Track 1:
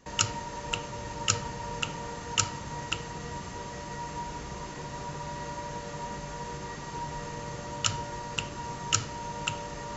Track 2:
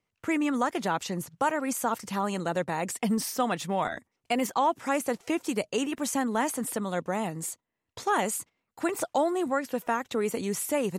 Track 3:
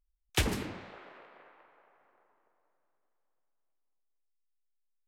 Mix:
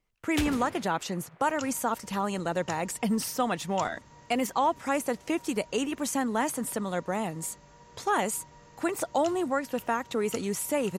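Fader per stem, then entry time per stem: −16.0, −0.5, −3.0 decibels; 1.40, 0.00, 0.00 seconds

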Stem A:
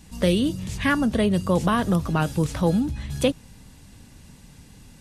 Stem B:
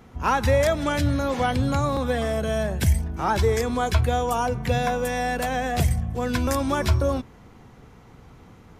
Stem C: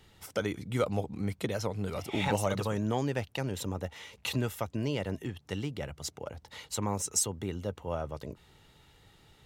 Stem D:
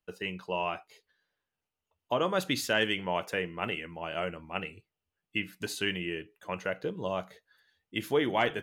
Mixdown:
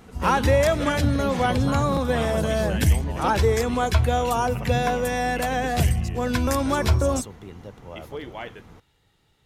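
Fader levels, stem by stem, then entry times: −10.0, +1.0, −5.5, −8.5 decibels; 0.00, 0.00, 0.00, 0.00 seconds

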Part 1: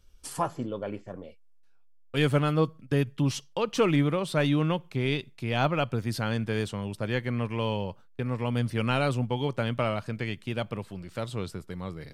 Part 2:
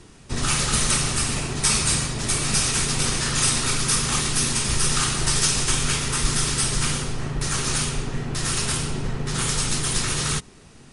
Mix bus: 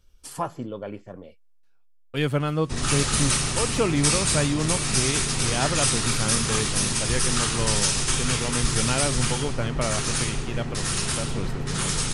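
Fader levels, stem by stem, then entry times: 0.0, −2.0 decibels; 0.00, 2.40 seconds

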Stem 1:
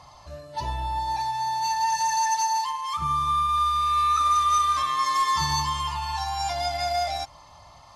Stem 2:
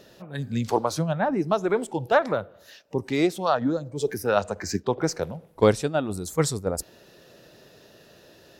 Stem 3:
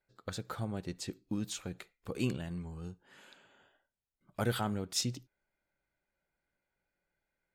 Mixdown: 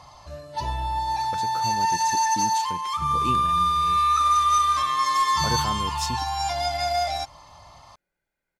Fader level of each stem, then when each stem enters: +1.5 dB, muted, +2.0 dB; 0.00 s, muted, 1.05 s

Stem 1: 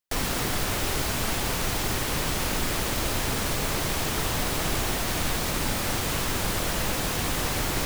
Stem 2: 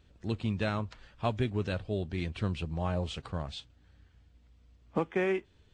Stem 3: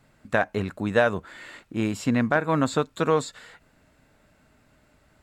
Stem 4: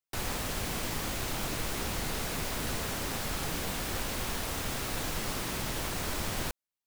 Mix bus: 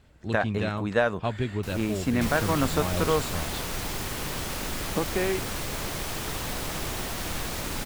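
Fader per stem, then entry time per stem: −5.5, +1.5, −3.0, −7.5 decibels; 2.10, 0.00, 0.00, 1.50 seconds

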